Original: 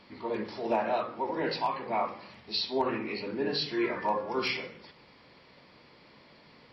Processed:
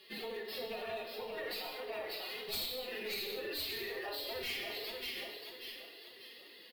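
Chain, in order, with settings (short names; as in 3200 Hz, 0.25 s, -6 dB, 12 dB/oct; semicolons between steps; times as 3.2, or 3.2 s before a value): median filter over 5 samples; compressor 16:1, threshold -40 dBFS, peak gain reduction 17.5 dB; gate -53 dBFS, range -8 dB; tilt +4 dB/oct; fixed phaser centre 2800 Hz, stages 4; feedback echo 0.587 s, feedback 40%, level -5.5 dB; tube stage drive 29 dB, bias 0.75; formant-preserving pitch shift +11.5 st; non-linear reverb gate 0.25 s falling, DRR 2 dB; wavefolder -37 dBFS; limiter -42.5 dBFS, peak gain reduction 5.5 dB; gain +11 dB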